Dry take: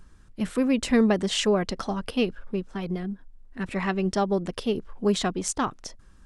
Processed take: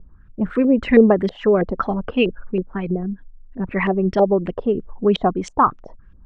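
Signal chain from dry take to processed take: formant sharpening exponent 1.5; LFO low-pass saw up 3.1 Hz 500–3200 Hz; gain +6 dB

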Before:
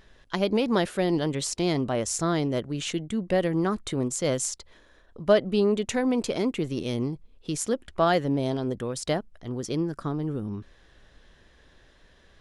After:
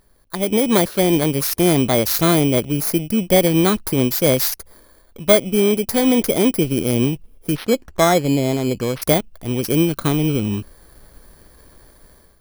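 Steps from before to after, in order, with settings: FFT order left unsorted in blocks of 16 samples; AGC gain up to 12 dB; in parallel at -10.5 dB: crossover distortion -36 dBFS; 7.55–9.02 on the sum: careless resampling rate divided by 6×, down filtered, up hold; gain -2.5 dB

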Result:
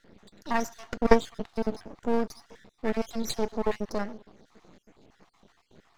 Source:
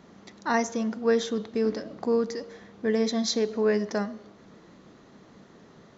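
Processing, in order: random spectral dropouts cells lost 51%; half-wave rectifier; 0.83–1.47 transient shaper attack +11 dB, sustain -1 dB; gain +1.5 dB

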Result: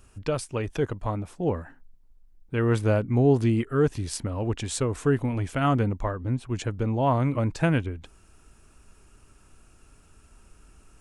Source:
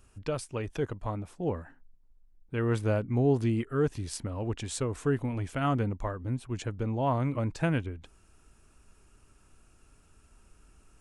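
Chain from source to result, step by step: 6–6.47 high shelf 9900 Hz -10.5 dB; gain +5 dB

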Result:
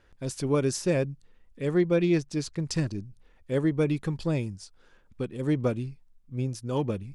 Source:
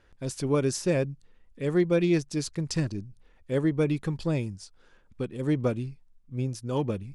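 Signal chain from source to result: 1.71–2.63 high shelf 8400 Hz -9.5 dB

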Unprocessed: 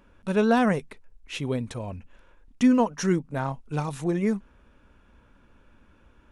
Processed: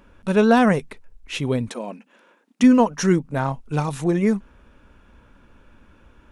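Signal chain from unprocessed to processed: 1.69–2.64 brick-wall FIR high-pass 180 Hz; gain +5.5 dB

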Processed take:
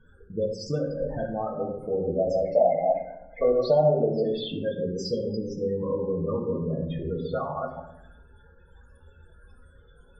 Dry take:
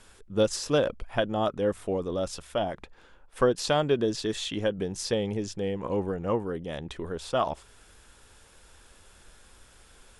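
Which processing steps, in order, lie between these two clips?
reverse delay 0.153 s, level -6 dB; compressor 20:1, threshold -28 dBFS, peak gain reduction 12 dB; 2.18–4.27 small resonant body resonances 640/2100 Hz, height 14 dB -> 17 dB, ringing for 20 ms; loudest bins only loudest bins 16; reverb RT60 0.85 s, pre-delay 3 ms, DRR -1 dB

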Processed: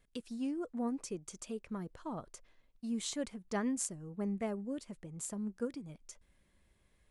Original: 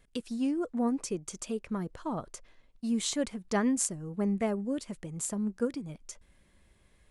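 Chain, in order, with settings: 2.85–5.19 mismatched tape noise reduction decoder only; gain -7 dB

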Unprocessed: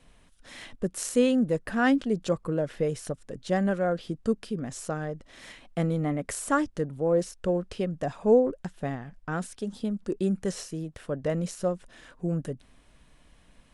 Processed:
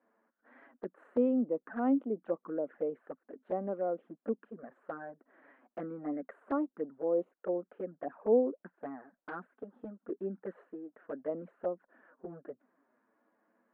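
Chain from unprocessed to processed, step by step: elliptic band-pass 250–1600 Hz, stop band 50 dB; de-esser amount 95%; envelope flanger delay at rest 9.5 ms, full sweep at -25.5 dBFS; gain -4.5 dB

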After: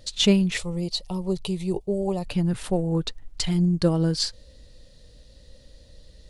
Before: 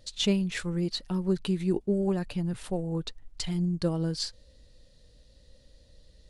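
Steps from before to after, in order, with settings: 0.57–2.26 fixed phaser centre 650 Hz, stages 4; gain +7 dB

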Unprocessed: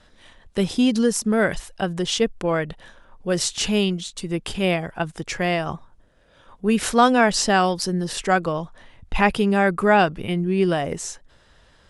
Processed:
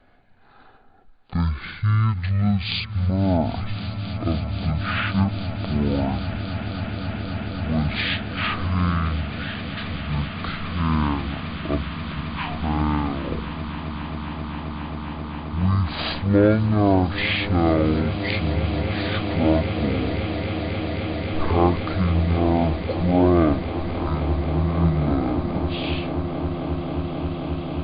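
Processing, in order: swelling echo 0.114 s, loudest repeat 8, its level -15 dB; speed mistake 78 rpm record played at 33 rpm; gain -2 dB

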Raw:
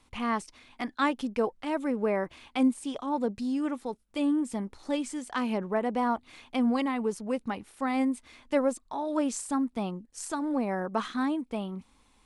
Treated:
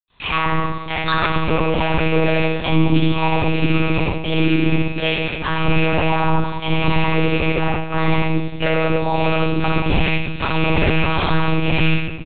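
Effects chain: rattling part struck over -42 dBFS, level -23 dBFS; gate with hold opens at -55 dBFS; tilt +4.5 dB/oct; resonator 62 Hz, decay 0.22 s, harmonics odd, mix 60%; in parallel at -6 dB: sample gate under -42 dBFS; 7.45–7.89 on the sum: air absorption 240 m; echo 70 ms -3.5 dB; reverb RT60 1.2 s, pre-delay 77 ms; monotone LPC vocoder at 8 kHz 160 Hz; maximiser +10.5 dB; 5–5.93 three-band expander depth 70%; gain -3.5 dB

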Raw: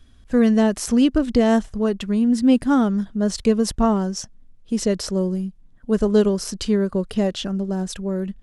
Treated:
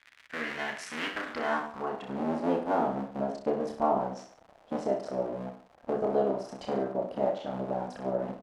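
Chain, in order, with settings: cycle switcher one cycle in 3, muted; recorder AGC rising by 13 dB/s; bell 370 Hz -6 dB 0.25 oct; reverse bouncing-ball echo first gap 30 ms, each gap 1.1×, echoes 5; crackle 210/s -28 dBFS; band-pass sweep 2000 Hz -> 680 Hz, 1.04–2.27

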